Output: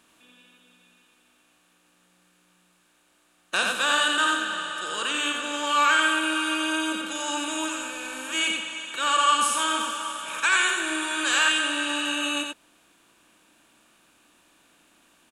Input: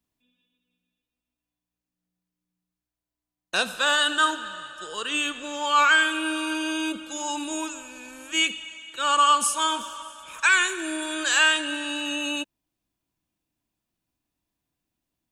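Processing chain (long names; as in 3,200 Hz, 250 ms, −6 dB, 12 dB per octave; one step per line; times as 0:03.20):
compressor on every frequency bin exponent 0.6
single-tap delay 89 ms −4 dB
level −5.5 dB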